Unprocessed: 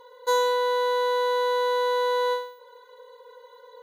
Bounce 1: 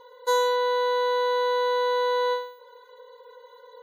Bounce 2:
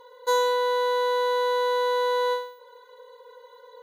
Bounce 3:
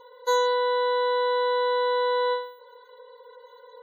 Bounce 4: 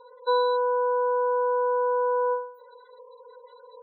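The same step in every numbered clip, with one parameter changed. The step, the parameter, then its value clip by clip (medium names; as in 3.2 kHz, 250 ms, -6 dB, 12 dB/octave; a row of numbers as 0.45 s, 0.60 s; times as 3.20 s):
spectral gate, under each frame's peak: -40 dB, -60 dB, -30 dB, -15 dB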